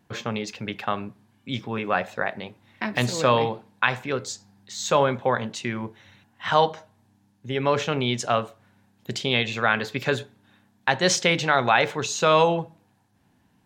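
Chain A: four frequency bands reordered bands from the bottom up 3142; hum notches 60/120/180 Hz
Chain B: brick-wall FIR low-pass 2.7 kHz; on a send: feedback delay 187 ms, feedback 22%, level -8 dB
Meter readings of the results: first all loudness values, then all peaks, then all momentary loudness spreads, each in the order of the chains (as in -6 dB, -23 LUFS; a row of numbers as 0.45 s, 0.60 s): -22.0 LUFS, -24.5 LUFS; -4.5 dBFS, -5.0 dBFS; 15 LU, 15 LU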